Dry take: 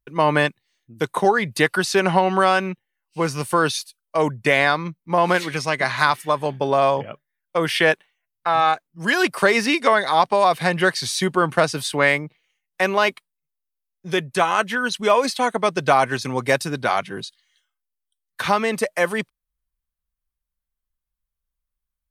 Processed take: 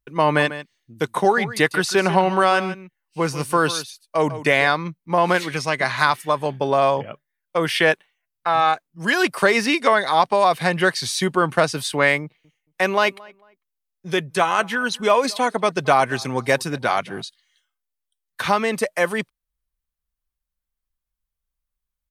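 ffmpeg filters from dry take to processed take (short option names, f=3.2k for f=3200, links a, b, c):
-filter_complex "[0:a]asplit=3[a][b][c];[a]afade=t=out:st=0.37:d=0.02[d];[b]aecho=1:1:146:0.211,afade=t=in:st=0.37:d=0.02,afade=t=out:st=4.67:d=0.02[e];[c]afade=t=in:st=4.67:d=0.02[f];[d][e][f]amix=inputs=3:normalize=0,asettb=1/sr,asplit=3[g][h][i];[g]atrim=end=12.224[j];[h]atrim=start=12.22:end=17.22,asetpts=PTS-STARTPTS,afade=t=in:d=0.004:c=qsin,afade=t=out:st=4.996:d=0.004:c=qsin,asplit=2[k][l];[l]adelay=224,lowpass=f=2.2k:p=1,volume=-23.5dB,asplit=2[m][n];[n]adelay=224,lowpass=f=2.2k:p=1,volume=0.27[o];[k][m][o]amix=inputs=3:normalize=0,atrim=end_sample=220500[p];[i]atrim=start=17.216[q];[j][p]acrossfade=d=0.004:c1=hsin:c2=qsin[r];[r][q]acrossfade=d=0.004:c1=qsin:c2=hsin"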